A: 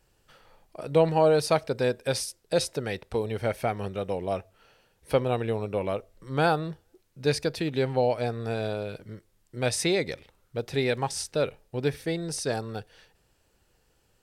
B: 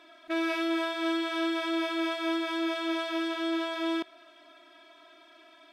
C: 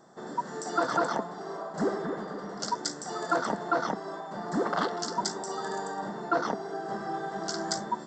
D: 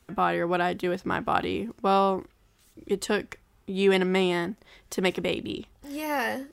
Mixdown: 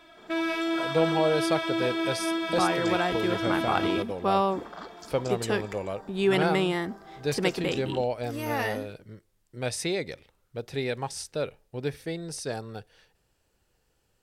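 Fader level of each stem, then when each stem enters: -4.0 dB, +1.0 dB, -13.5 dB, -2.0 dB; 0.00 s, 0.00 s, 0.00 s, 2.40 s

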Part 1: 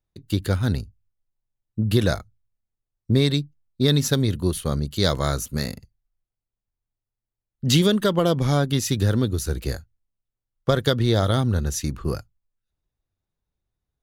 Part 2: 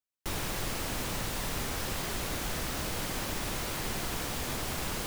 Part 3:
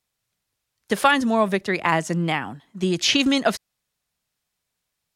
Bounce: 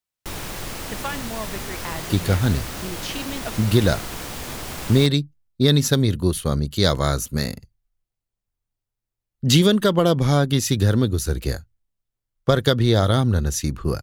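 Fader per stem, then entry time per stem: +2.5 dB, +2.5 dB, -13.0 dB; 1.80 s, 0.00 s, 0.00 s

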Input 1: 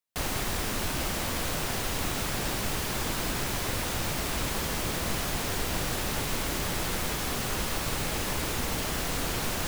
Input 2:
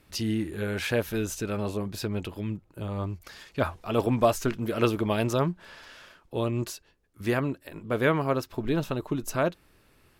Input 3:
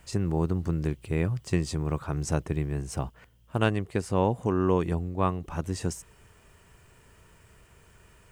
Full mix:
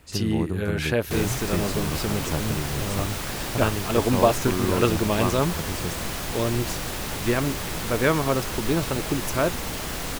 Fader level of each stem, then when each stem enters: 0.0 dB, +2.5 dB, -1.5 dB; 0.95 s, 0.00 s, 0.00 s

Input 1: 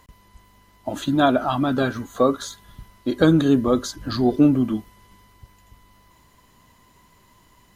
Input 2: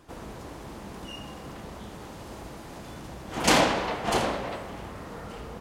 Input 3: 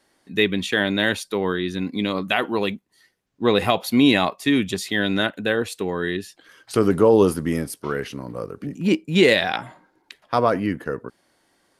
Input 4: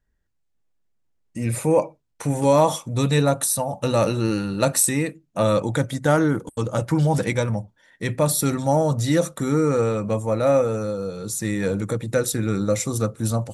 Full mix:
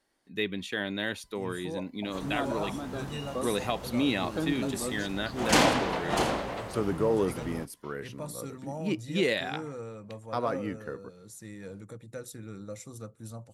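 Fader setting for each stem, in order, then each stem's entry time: -16.5 dB, -2.0 dB, -11.5 dB, -19.5 dB; 1.15 s, 2.05 s, 0.00 s, 0.00 s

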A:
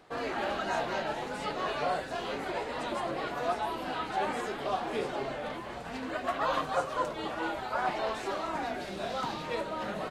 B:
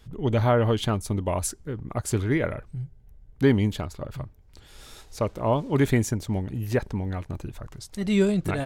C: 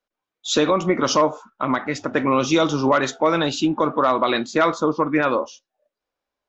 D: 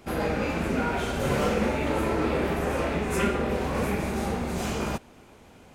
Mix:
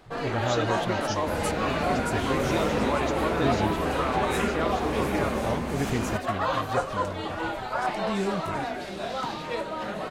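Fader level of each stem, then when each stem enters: +3.0 dB, -8.0 dB, -12.5 dB, -2.5 dB; 0.00 s, 0.00 s, 0.00 s, 1.20 s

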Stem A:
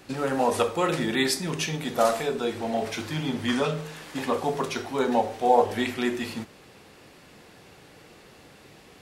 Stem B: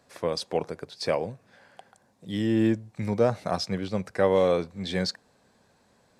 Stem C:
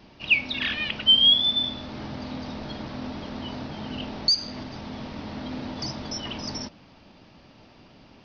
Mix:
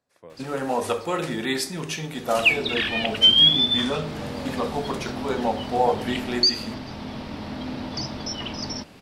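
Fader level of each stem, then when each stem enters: -1.5 dB, -17.5 dB, +2.0 dB; 0.30 s, 0.00 s, 2.15 s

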